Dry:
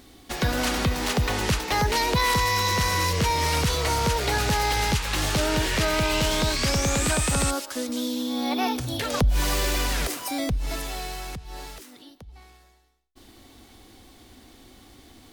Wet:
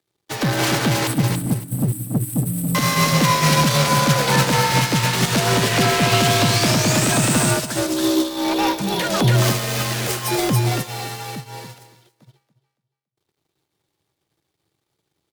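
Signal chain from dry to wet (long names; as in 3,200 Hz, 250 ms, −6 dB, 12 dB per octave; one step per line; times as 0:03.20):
0:01.07–0:02.75: linear-phase brick-wall band-stop 250–7,600 Hz
leveller curve on the samples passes 2
frequency shifter +73 Hz
leveller curve on the samples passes 3
repeating echo 282 ms, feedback 30%, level −5.5 dB
expander for the loud parts 2.5 to 1, over −31 dBFS
level −3.5 dB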